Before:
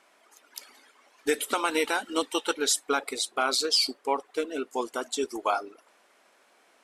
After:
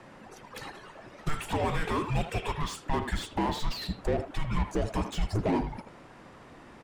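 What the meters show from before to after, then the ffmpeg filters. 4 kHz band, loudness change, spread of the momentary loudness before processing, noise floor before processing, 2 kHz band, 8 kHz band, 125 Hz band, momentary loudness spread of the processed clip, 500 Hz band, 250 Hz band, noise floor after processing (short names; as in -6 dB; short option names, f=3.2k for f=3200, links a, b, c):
-11.0 dB, -4.5 dB, 10 LU, -63 dBFS, -6.0 dB, -14.5 dB, n/a, 20 LU, -4.5 dB, +1.5 dB, -51 dBFS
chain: -filter_complex "[0:a]agate=range=-9dB:threshold=-50dB:ratio=16:detection=peak,equalizer=f=720:t=o:w=0.77:g=3.5,asplit=2[a][b];[b]acompressor=threshold=-40dB:ratio=6,volume=1.5dB[c];[a][c]amix=inputs=2:normalize=0,alimiter=limit=-21.5dB:level=0:latency=1:release=317,asplit=2[d][e];[e]highpass=f=720:p=1,volume=20dB,asoftclip=type=tanh:threshold=-21.5dB[f];[d][f]amix=inputs=2:normalize=0,lowpass=f=1.3k:p=1,volume=-6dB,acrossover=split=290|2400[g][h][i];[i]asoftclip=type=tanh:threshold=-40dB[j];[g][h][j]amix=inputs=3:normalize=0,afreqshift=-450,asplit=2[k][l];[l]adelay=80,highpass=300,lowpass=3.4k,asoftclip=type=hard:threshold=-27dB,volume=-9dB[m];[k][m]amix=inputs=2:normalize=0,volume=3dB"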